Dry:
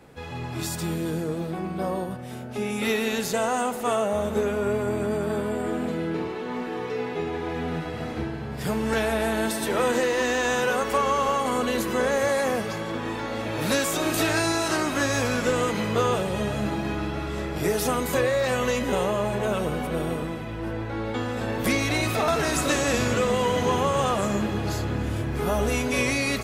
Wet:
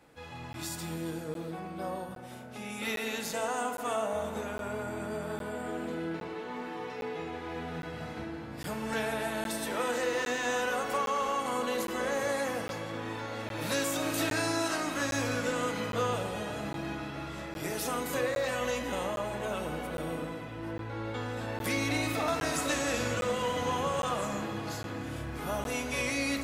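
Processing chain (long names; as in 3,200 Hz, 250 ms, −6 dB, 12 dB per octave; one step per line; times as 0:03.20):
low-shelf EQ 490 Hz −6 dB
notch filter 410 Hz, Q 12
feedback delay network reverb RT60 2.5 s, low-frequency decay 0.95×, high-frequency decay 0.35×, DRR 6.5 dB
regular buffer underruns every 0.81 s, samples 512, zero, from 0:00.53
level −6.5 dB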